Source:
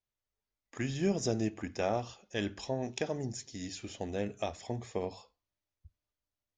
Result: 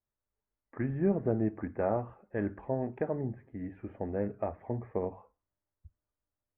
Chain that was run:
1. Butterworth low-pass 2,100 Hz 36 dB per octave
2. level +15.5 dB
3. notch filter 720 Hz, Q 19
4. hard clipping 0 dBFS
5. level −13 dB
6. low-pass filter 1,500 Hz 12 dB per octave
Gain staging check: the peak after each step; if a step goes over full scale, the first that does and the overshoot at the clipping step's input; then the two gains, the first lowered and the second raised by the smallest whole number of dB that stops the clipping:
−19.0, −3.5, −3.5, −3.5, −16.5, −16.5 dBFS
no step passes full scale

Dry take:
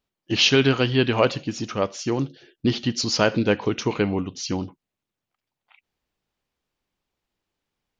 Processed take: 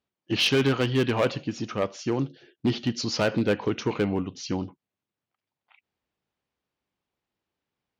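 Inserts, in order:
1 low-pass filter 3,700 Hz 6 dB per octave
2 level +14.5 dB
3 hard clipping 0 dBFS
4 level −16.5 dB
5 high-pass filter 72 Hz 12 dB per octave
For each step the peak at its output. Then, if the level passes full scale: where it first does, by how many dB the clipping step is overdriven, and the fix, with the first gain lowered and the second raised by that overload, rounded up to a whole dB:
−5.0, +9.5, 0.0, −16.5, −12.5 dBFS
step 2, 9.5 dB
step 2 +4.5 dB, step 4 −6.5 dB

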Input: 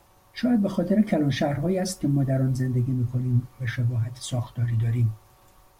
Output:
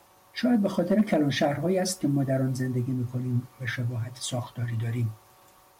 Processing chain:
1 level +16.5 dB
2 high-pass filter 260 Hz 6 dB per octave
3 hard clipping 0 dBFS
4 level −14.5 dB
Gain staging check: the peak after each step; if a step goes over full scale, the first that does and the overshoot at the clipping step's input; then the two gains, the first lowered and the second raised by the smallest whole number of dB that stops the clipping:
+6.0, +4.5, 0.0, −14.5 dBFS
step 1, 4.5 dB
step 1 +11.5 dB, step 4 −9.5 dB

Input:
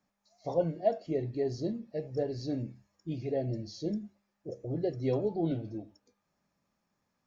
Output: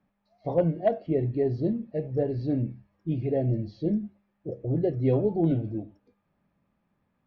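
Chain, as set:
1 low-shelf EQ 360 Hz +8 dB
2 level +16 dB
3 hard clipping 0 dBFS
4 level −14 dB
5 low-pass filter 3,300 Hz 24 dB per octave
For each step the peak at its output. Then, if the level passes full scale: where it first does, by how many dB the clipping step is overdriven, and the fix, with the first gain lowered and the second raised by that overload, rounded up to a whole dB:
−12.0, +4.0, 0.0, −14.0, −13.5 dBFS
step 2, 4.0 dB
step 2 +12 dB, step 4 −10 dB

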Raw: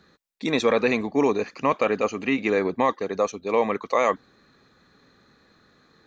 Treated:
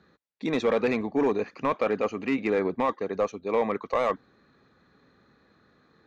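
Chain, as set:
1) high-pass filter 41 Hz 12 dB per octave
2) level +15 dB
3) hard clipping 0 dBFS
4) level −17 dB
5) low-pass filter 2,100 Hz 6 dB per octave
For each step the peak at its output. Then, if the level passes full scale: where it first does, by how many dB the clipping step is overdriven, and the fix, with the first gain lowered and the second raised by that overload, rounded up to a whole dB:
−8.5, +6.5, 0.0, −17.0, −17.0 dBFS
step 2, 6.5 dB
step 2 +8 dB, step 4 −10 dB

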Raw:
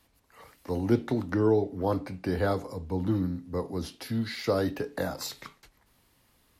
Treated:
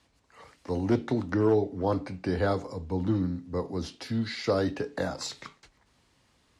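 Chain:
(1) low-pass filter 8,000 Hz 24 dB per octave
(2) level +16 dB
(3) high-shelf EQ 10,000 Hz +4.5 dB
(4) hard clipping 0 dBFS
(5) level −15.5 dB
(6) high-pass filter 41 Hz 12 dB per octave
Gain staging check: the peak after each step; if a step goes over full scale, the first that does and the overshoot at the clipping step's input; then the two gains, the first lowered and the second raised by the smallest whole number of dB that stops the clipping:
−10.5, +5.5, +5.5, 0.0, −15.5, −13.5 dBFS
step 2, 5.5 dB
step 2 +10 dB, step 5 −9.5 dB

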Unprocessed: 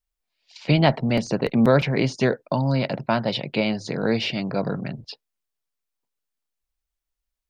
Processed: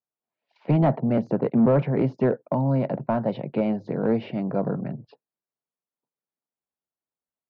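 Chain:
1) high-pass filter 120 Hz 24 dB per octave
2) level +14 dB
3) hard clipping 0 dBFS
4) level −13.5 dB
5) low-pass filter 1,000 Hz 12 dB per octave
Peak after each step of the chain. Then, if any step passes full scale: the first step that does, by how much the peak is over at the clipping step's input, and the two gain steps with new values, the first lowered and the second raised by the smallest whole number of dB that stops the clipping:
−5.0, +9.0, 0.0, −13.5, −13.0 dBFS
step 2, 9.0 dB
step 2 +5 dB, step 4 −4.5 dB

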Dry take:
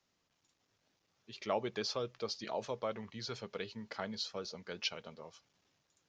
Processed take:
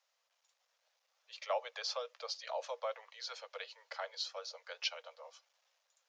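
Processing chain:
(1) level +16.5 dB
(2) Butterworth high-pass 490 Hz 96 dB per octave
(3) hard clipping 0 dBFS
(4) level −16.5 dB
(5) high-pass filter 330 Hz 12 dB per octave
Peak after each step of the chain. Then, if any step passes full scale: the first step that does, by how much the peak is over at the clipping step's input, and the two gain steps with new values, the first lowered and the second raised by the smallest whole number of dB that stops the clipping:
−3.5, −5.5, −5.5, −22.0, −22.0 dBFS
no step passes full scale

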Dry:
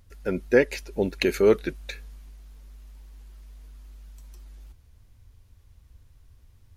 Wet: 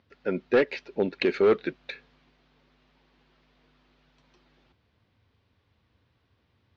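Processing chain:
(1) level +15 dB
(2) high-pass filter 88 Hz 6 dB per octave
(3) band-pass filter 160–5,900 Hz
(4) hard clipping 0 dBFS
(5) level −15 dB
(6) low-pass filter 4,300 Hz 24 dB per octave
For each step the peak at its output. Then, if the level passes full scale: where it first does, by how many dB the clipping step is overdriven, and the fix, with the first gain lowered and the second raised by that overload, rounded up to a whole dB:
+10.0, +10.5, +9.5, 0.0, −15.0, −13.0 dBFS
step 1, 9.5 dB
step 1 +5 dB, step 5 −5 dB

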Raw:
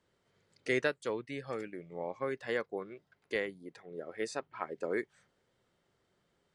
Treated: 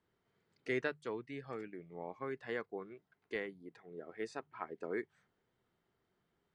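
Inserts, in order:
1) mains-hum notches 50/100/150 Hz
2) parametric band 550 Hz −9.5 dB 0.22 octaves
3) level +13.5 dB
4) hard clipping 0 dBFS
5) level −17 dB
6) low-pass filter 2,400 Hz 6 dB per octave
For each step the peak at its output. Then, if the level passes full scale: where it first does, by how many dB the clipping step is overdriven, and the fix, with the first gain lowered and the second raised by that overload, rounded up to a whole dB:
−17.0, −16.5, −3.0, −3.0, −20.0, −22.0 dBFS
no step passes full scale

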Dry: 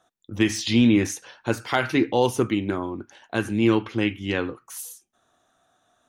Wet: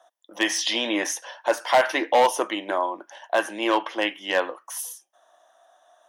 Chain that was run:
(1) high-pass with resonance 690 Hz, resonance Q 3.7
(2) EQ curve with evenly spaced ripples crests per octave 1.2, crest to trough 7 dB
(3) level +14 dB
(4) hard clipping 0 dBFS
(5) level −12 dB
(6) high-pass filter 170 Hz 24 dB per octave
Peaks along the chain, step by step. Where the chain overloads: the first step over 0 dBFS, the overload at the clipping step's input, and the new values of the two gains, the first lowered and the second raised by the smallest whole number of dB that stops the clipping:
−5.0, −4.5, +9.5, 0.0, −12.0, −7.5 dBFS
step 3, 9.5 dB
step 3 +4 dB, step 5 −2 dB

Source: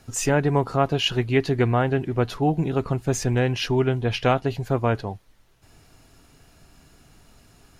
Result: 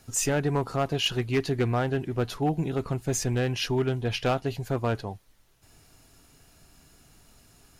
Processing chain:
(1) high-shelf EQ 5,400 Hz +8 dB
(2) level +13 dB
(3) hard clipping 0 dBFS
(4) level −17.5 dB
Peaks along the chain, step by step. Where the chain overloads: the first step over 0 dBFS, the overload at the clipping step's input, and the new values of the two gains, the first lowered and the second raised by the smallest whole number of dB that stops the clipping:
−6.0, +7.0, 0.0, −17.5 dBFS
step 2, 7.0 dB
step 2 +6 dB, step 4 −10.5 dB

